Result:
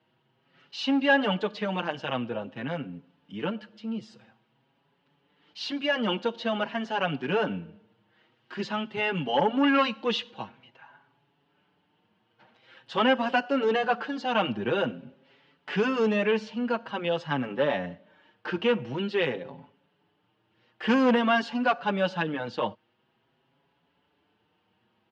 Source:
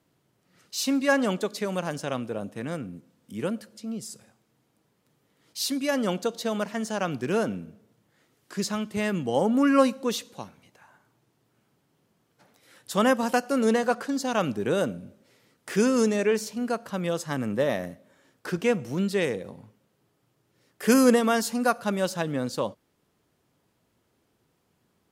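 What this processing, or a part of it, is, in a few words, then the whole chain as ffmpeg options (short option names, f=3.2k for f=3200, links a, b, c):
barber-pole flanger into a guitar amplifier: -filter_complex "[0:a]asettb=1/sr,asplit=3[a][b][c];[a]atrim=end=9.164[d];[b]atrim=start=9.16:end=10.31,asetpts=PTS-STARTPTS,afade=t=in:d=0.004:c=qsin,afade=t=out:st=1.146:d=0.004:c=qsin,equalizer=f=3.8k:t=o:w=2.5:g=4[e];[c]atrim=start=10.306[f];[d][e]acrossfade=d=0.004:c1=hsin:c2=qsin[g];[g][f]acrossfade=d=0.004:c1=qsin:c2=hsin,asplit=2[h][i];[i]adelay=5.9,afreqshift=0.48[j];[h][j]amix=inputs=2:normalize=1,asoftclip=type=tanh:threshold=-19dB,highpass=100,equalizer=f=880:t=q:w=4:g=8,equalizer=f=1.6k:t=q:w=4:g=5,equalizer=f=2.9k:t=q:w=4:g=10,lowpass=f=4k:w=0.5412,lowpass=f=4k:w=1.3066,volume=2dB"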